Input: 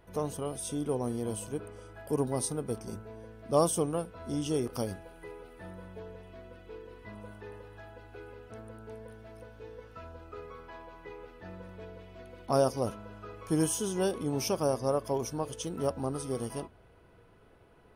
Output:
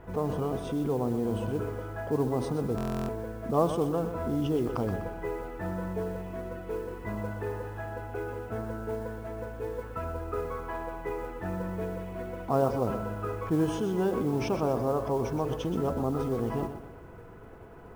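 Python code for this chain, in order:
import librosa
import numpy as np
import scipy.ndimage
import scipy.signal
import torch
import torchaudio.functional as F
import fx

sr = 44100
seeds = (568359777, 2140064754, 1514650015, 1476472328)

p1 = scipy.signal.sosfilt(scipy.signal.butter(2, 1700.0, 'lowpass', fs=sr, output='sos'), x)
p2 = fx.notch(p1, sr, hz=570.0, q=12.0)
p3 = fx.over_compress(p2, sr, threshold_db=-41.0, ratio=-1.0)
p4 = p2 + F.gain(torch.from_numpy(p3), 2.0).numpy()
p5 = fx.mod_noise(p4, sr, seeds[0], snr_db=28)
p6 = p5 + fx.echo_feedback(p5, sr, ms=124, feedback_pct=41, wet_db=-10.0, dry=0)
p7 = fx.buffer_glitch(p6, sr, at_s=(2.76,), block=1024, repeats=13)
y = F.gain(torch.from_numpy(p7), 1.0).numpy()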